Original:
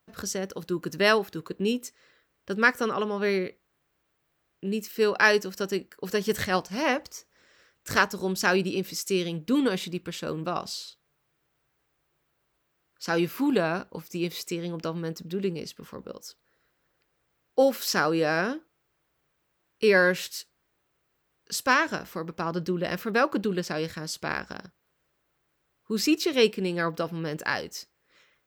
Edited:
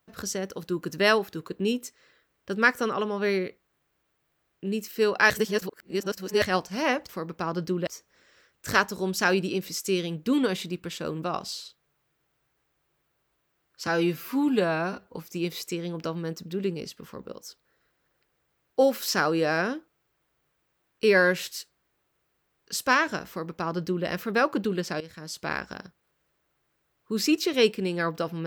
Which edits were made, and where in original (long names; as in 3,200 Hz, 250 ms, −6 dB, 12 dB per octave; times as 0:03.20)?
0:05.30–0:06.42: reverse
0:13.09–0:13.94: time-stretch 1.5×
0:22.08–0:22.86: duplicate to 0:07.09
0:23.80–0:24.28: fade in, from −15.5 dB